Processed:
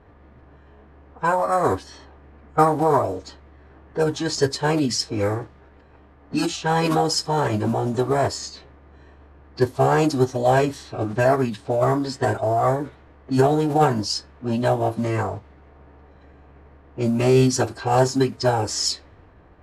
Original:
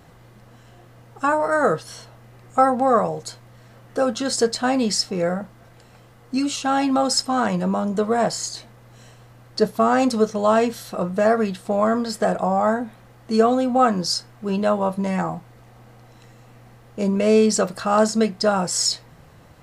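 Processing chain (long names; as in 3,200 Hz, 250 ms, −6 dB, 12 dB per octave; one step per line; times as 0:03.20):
floating-point word with a short mantissa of 4 bits
phase-vocoder pitch shift with formants kept −9 semitones
low-pass that shuts in the quiet parts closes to 1,800 Hz, open at −17.5 dBFS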